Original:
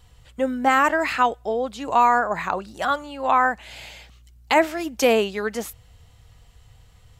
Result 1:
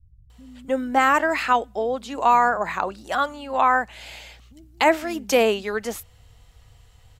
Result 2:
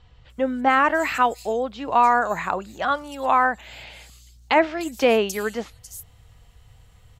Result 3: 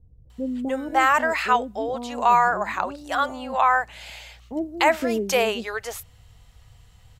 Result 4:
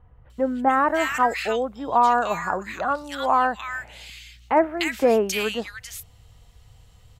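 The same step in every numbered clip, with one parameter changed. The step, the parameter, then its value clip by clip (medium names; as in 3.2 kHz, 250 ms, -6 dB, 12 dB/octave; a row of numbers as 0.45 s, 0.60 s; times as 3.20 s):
bands offset in time, split: 160 Hz, 5.1 kHz, 430 Hz, 1.7 kHz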